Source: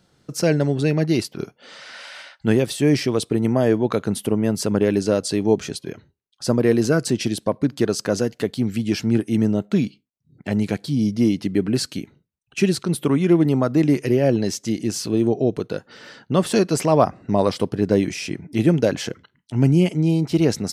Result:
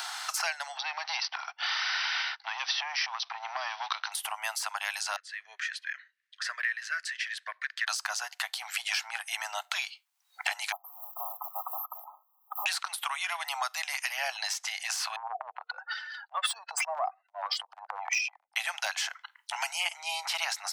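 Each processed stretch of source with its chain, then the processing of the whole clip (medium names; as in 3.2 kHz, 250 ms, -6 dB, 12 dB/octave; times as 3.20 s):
0.77–4.12 s: compression, threshold -30 dBFS + waveshaping leveller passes 2 + brick-wall FIR low-pass 6.1 kHz
5.16–7.87 s: two resonant band-passes 830 Hz, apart 2.2 oct + band-stop 850 Hz, Q 15
10.72–12.66 s: block-companded coder 7-bit + brick-wall FIR band-stop 1.3–12 kHz
15.16–18.56 s: spectral contrast enhancement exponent 2.2 + transient shaper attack -4 dB, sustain +10 dB + three bands expanded up and down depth 100%
whole clip: de-esser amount 55%; steep high-pass 750 Hz 72 dB/octave; three bands compressed up and down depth 100%; trim +2 dB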